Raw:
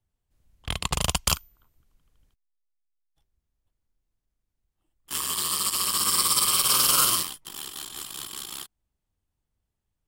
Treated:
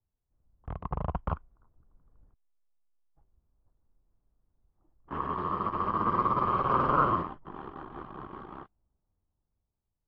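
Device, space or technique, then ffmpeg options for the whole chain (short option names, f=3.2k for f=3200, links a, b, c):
action camera in a waterproof case: -af "lowpass=f=1.2k:w=0.5412,lowpass=f=1.2k:w=1.3066,dynaudnorm=f=510:g=7:m=13dB,volume=-5.5dB" -ar 24000 -c:a aac -b:a 48k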